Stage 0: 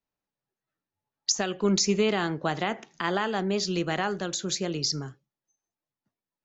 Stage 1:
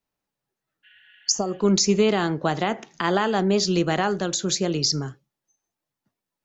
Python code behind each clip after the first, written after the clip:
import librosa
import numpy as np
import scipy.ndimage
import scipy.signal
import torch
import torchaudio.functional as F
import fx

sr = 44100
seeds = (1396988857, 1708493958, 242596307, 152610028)

y = fx.spec_repair(x, sr, seeds[0], start_s=0.86, length_s=0.66, low_hz=1400.0, high_hz=4400.0, source='after')
y = fx.rider(y, sr, range_db=10, speed_s=2.0)
y = fx.dynamic_eq(y, sr, hz=2200.0, q=0.81, threshold_db=-39.0, ratio=4.0, max_db=-4)
y = y * 10.0 ** (5.5 / 20.0)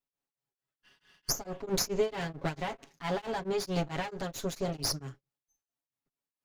y = fx.lower_of_two(x, sr, delay_ms=7.2)
y = y * np.abs(np.cos(np.pi * 4.5 * np.arange(len(y)) / sr))
y = y * 10.0 ** (-6.5 / 20.0)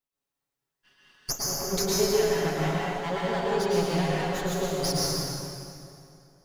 y = fx.rev_plate(x, sr, seeds[1], rt60_s=2.6, hf_ratio=0.8, predelay_ms=95, drr_db=-6.0)